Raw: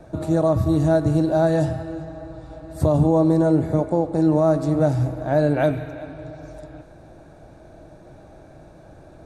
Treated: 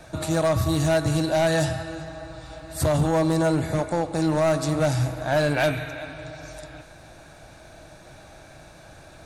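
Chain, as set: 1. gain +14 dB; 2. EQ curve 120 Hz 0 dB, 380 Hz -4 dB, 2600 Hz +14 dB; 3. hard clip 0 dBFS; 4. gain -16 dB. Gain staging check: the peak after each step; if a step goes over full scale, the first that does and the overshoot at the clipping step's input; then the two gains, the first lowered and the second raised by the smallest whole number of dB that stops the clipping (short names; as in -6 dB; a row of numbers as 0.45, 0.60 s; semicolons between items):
+7.0, +10.0, 0.0, -16.0 dBFS; step 1, 10.0 dB; step 1 +4 dB, step 4 -6 dB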